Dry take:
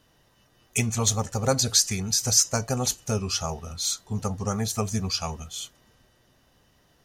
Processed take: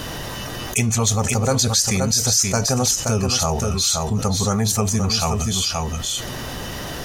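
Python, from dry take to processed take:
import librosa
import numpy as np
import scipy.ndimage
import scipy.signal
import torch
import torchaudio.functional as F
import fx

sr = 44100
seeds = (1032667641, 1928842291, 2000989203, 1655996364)

y = x + 10.0 ** (-9.0 / 20.0) * np.pad(x, (int(526 * sr / 1000.0), 0))[:len(x)]
y = fx.env_flatten(y, sr, amount_pct=70)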